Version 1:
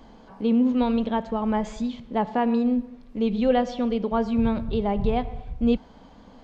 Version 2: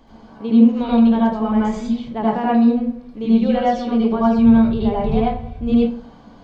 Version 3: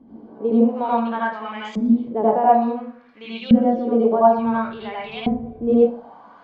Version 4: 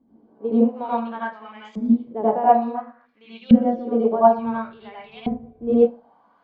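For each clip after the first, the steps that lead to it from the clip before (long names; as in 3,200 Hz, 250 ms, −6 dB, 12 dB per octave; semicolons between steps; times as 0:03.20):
convolution reverb RT60 0.40 s, pre-delay 73 ms, DRR −6 dB; level −2.5 dB
auto-filter band-pass saw up 0.57 Hz 230–3,200 Hz; level +8.5 dB
gain on a spectral selection 0:02.74–0:03.06, 570–2,100 Hz +12 dB; expander for the loud parts 1.5 to 1, over −37 dBFS; level +1.5 dB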